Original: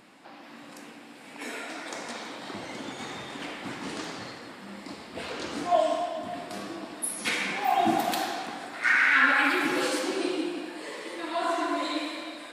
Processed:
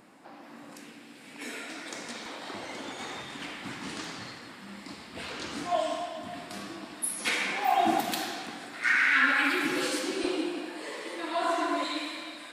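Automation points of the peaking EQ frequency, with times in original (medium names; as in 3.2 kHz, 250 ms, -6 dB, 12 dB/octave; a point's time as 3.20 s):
peaking EQ -6.5 dB 1.7 oct
3.3 kHz
from 0.75 s 800 Hz
from 2.26 s 150 Hz
from 3.22 s 520 Hz
from 7.20 s 140 Hz
from 8.00 s 760 Hz
from 10.24 s 88 Hz
from 11.84 s 480 Hz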